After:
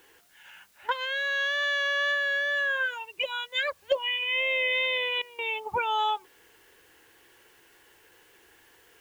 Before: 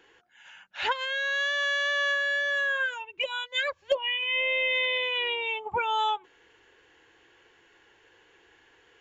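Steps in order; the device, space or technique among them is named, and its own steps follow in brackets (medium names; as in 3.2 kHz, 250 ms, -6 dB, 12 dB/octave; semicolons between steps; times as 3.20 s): worn cassette (low-pass 6.1 kHz; wow and flutter 23 cents; level dips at 0.72/5.22 s, 165 ms -17 dB; white noise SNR 33 dB)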